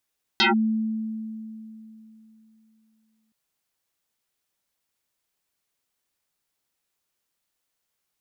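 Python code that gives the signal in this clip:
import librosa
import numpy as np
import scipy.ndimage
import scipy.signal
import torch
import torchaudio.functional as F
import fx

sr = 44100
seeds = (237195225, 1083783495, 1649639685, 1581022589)

y = fx.fm2(sr, length_s=2.92, level_db=-15, carrier_hz=220.0, ratio=2.62, index=8.4, index_s=0.14, decay_s=3.22, shape='linear')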